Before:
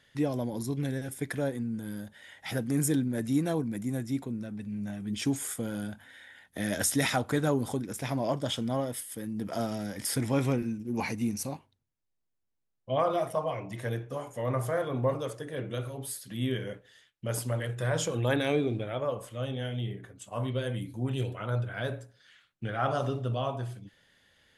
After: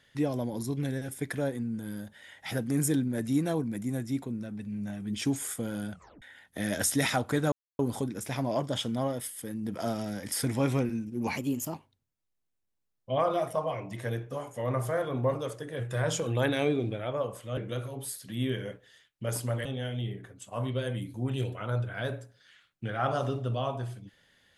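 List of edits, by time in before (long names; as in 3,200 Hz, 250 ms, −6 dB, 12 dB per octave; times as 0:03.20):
0:05.92: tape stop 0.30 s
0:07.52: splice in silence 0.27 s
0:11.10–0:11.54: play speed 118%
0:17.67–0:19.45: move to 0:15.59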